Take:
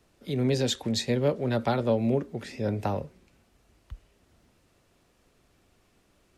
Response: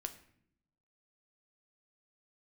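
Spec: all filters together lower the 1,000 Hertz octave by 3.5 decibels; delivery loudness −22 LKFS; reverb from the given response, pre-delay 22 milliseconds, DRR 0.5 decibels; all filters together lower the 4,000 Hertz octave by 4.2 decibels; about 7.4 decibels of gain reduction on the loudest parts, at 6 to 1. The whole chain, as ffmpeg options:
-filter_complex "[0:a]equalizer=frequency=1000:width_type=o:gain=-5,equalizer=frequency=4000:width_type=o:gain=-4.5,acompressor=threshold=-29dB:ratio=6,asplit=2[link_01][link_02];[1:a]atrim=start_sample=2205,adelay=22[link_03];[link_02][link_03]afir=irnorm=-1:irlink=0,volume=1.5dB[link_04];[link_01][link_04]amix=inputs=2:normalize=0,volume=10dB"

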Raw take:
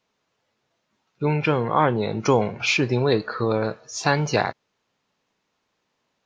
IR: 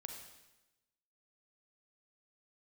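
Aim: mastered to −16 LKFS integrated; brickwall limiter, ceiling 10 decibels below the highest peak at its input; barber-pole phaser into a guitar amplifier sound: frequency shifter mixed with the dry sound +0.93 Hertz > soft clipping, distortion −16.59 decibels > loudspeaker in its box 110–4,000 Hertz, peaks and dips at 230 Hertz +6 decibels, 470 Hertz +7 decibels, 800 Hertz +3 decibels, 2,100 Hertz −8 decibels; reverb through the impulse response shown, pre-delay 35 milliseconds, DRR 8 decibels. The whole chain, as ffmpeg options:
-filter_complex "[0:a]alimiter=limit=-15.5dB:level=0:latency=1,asplit=2[link_01][link_02];[1:a]atrim=start_sample=2205,adelay=35[link_03];[link_02][link_03]afir=irnorm=-1:irlink=0,volume=-4dB[link_04];[link_01][link_04]amix=inputs=2:normalize=0,asplit=2[link_05][link_06];[link_06]afreqshift=0.93[link_07];[link_05][link_07]amix=inputs=2:normalize=1,asoftclip=threshold=-21.5dB,highpass=110,equalizer=frequency=230:width_type=q:width=4:gain=6,equalizer=frequency=470:width_type=q:width=4:gain=7,equalizer=frequency=800:width_type=q:width=4:gain=3,equalizer=frequency=2100:width_type=q:width=4:gain=-8,lowpass=frequency=4000:width=0.5412,lowpass=frequency=4000:width=1.3066,volume=12dB"

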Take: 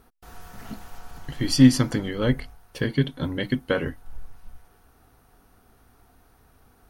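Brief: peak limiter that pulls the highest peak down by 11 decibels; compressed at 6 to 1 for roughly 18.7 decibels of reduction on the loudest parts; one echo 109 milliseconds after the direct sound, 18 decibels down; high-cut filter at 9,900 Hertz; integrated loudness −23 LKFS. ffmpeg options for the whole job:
ffmpeg -i in.wav -af "lowpass=9900,acompressor=threshold=-29dB:ratio=6,alimiter=level_in=4dB:limit=-24dB:level=0:latency=1,volume=-4dB,aecho=1:1:109:0.126,volume=17dB" out.wav

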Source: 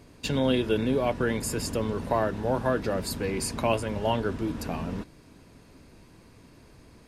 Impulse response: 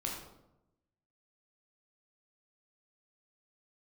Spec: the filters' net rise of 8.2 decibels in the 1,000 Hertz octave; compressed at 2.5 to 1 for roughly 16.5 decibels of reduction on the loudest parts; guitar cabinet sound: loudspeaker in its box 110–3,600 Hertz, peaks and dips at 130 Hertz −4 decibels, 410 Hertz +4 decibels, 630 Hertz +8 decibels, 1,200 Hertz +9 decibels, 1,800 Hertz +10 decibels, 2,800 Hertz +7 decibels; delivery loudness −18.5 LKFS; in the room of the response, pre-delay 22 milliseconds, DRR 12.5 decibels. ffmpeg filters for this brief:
-filter_complex "[0:a]equalizer=frequency=1000:width_type=o:gain=4,acompressor=threshold=-45dB:ratio=2.5,asplit=2[link_01][link_02];[1:a]atrim=start_sample=2205,adelay=22[link_03];[link_02][link_03]afir=irnorm=-1:irlink=0,volume=-14.5dB[link_04];[link_01][link_04]amix=inputs=2:normalize=0,highpass=110,equalizer=frequency=130:width_type=q:width=4:gain=-4,equalizer=frequency=410:width_type=q:width=4:gain=4,equalizer=frequency=630:width_type=q:width=4:gain=8,equalizer=frequency=1200:width_type=q:width=4:gain=9,equalizer=frequency=1800:width_type=q:width=4:gain=10,equalizer=frequency=2800:width_type=q:width=4:gain=7,lowpass=frequency=3600:width=0.5412,lowpass=frequency=3600:width=1.3066,volume=19.5dB"

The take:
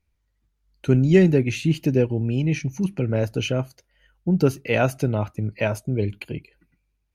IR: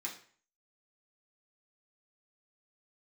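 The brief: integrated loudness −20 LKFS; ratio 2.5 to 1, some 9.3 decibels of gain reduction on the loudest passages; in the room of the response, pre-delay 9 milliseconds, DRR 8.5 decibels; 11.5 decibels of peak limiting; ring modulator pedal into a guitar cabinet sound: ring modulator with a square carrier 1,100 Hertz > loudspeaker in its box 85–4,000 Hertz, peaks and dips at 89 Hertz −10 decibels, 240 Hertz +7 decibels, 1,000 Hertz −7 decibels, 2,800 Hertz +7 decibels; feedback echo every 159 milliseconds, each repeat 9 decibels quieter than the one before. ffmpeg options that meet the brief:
-filter_complex "[0:a]acompressor=threshold=-24dB:ratio=2.5,alimiter=limit=-22dB:level=0:latency=1,aecho=1:1:159|318|477|636:0.355|0.124|0.0435|0.0152,asplit=2[link_01][link_02];[1:a]atrim=start_sample=2205,adelay=9[link_03];[link_02][link_03]afir=irnorm=-1:irlink=0,volume=-8.5dB[link_04];[link_01][link_04]amix=inputs=2:normalize=0,aeval=exprs='val(0)*sgn(sin(2*PI*1100*n/s))':channel_layout=same,highpass=85,equalizer=frequency=89:width_type=q:width=4:gain=-10,equalizer=frequency=240:width_type=q:width=4:gain=7,equalizer=frequency=1000:width_type=q:width=4:gain=-7,equalizer=frequency=2800:width_type=q:width=4:gain=7,lowpass=frequency=4000:width=0.5412,lowpass=frequency=4000:width=1.3066,volume=11dB"

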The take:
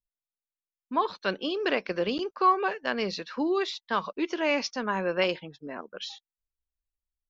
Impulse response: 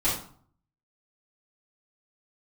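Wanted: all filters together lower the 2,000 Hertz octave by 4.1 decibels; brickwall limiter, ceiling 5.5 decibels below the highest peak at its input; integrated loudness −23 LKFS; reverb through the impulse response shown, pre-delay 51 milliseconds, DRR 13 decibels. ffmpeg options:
-filter_complex "[0:a]equalizer=frequency=2000:width_type=o:gain=-5.5,alimiter=limit=-19dB:level=0:latency=1,asplit=2[link_01][link_02];[1:a]atrim=start_sample=2205,adelay=51[link_03];[link_02][link_03]afir=irnorm=-1:irlink=0,volume=-24dB[link_04];[link_01][link_04]amix=inputs=2:normalize=0,volume=8dB"

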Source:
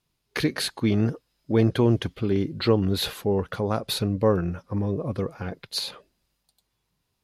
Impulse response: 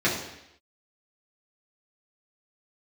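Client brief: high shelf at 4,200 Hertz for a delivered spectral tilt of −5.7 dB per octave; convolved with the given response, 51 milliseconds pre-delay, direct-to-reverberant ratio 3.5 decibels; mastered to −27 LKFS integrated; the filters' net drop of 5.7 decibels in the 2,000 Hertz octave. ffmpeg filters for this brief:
-filter_complex "[0:a]equalizer=frequency=2000:width_type=o:gain=-8,highshelf=frequency=4200:gain=3,asplit=2[link_01][link_02];[1:a]atrim=start_sample=2205,adelay=51[link_03];[link_02][link_03]afir=irnorm=-1:irlink=0,volume=-18.5dB[link_04];[link_01][link_04]amix=inputs=2:normalize=0,volume=-4dB"

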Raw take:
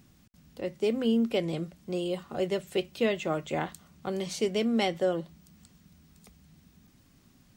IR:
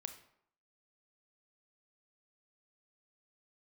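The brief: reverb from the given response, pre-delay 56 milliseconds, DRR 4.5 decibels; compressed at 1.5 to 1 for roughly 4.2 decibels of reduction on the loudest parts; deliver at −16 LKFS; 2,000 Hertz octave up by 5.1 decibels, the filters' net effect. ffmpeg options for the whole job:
-filter_complex "[0:a]equalizer=frequency=2000:width_type=o:gain=6,acompressor=threshold=-33dB:ratio=1.5,asplit=2[link_01][link_02];[1:a]atrim=start_sample=2205,adelay=56[link_03];[link_02][link_03]afir=irnorm=-1:irlink=0,volume=-1dB[link_04];[link_01][link_04]amix=inputs=2:normalize=0,volume=15.5dB"

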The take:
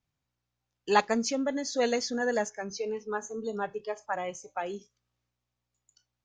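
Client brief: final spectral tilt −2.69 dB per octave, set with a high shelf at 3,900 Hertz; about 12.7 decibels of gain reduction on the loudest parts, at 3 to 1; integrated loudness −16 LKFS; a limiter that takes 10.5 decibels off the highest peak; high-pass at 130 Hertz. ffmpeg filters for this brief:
ffmpeg -i in.wav -af "highpass=130,highshelf=frequency=3900:gain=4,acompressor=threshold=-34dB:ratio=3,volume=23dB,alimiter=limit=-6dB:level=0:latency=1" out.wav

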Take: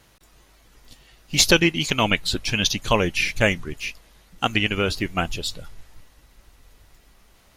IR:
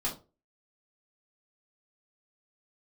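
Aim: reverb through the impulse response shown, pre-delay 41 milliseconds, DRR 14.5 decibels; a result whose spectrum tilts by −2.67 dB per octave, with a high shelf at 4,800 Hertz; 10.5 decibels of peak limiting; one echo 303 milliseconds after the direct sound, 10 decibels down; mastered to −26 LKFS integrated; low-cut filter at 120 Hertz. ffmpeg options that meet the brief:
-filter_complex "[0:a]highpass=120,highshelf=frequency=4800:gain=4.5,alimiter=limit=-10dB:level=0:latency=1,aecho=1:1:303:0.316,asplit=2[link_01][link_02];[1:a]atrim=start_sample=2205,adelay=41[link_03];[link_02][link_03]afir=irnorm=-1:irlink=0,volume=-19dB[link_04];[link_01][link_04]amix=inputs=2:normalize=0,volume=-2.5dB"

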